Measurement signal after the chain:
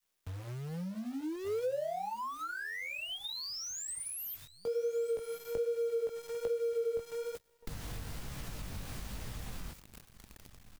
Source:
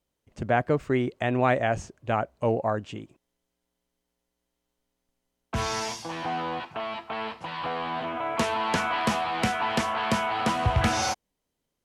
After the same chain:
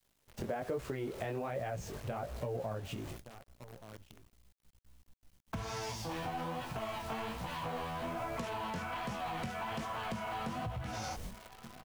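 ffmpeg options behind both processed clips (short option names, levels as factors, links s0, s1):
-filter_complex "[0:a]aeval=exprs='val(0)+0.5*0.0168*sgn(val(0))':c=same,agate=range=0.0355:threshold=0.01:ratio=16:detection=peak,flanger=delay=15.5:depth=7.1:speed=1.2,alimiter=limit=0.075:level=0:latency=1:release=10,acrossover=split=140|3000[s0][s1][s2];[s0]acompressor=threshold=0.00158:ratio=2[s3];[s3][s1][s2]amix=inputs=3:normalize=0,aecho=1:1:1174:0.0668,asubboost=boost=10.5:cutoff=120,acrusher=bits=9:dc=4:mix=0:aa=0.000001,acompressor=threshold=0.0112:ratio=6,adynamicequalizer=threshold=0.00158:dfrequency=470:dqfactor=1.1:tfrequency=470:tqfactor=1.1:attack=5:release=100:ratio=0.375:range=4:mode=boostabove:tftype=bell"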